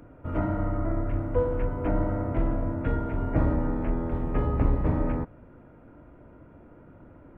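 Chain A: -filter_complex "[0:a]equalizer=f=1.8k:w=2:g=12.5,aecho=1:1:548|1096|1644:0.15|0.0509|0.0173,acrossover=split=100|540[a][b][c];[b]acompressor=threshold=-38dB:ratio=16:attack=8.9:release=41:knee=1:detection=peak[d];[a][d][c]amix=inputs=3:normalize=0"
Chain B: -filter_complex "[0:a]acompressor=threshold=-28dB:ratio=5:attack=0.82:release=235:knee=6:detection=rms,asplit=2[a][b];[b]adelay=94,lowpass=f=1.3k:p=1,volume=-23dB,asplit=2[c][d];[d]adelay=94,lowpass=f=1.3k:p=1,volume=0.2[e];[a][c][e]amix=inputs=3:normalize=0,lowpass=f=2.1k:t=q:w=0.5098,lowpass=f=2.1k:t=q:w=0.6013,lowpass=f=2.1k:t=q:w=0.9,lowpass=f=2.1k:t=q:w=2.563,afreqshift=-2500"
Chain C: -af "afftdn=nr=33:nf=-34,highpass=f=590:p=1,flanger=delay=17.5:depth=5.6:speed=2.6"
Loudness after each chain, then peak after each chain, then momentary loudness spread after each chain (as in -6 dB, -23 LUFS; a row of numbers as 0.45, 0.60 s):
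-30.5, -30.5, -39.5 LUFS; -13.5, -21.5, -22.0 dBFS; 18, 18, 6 LU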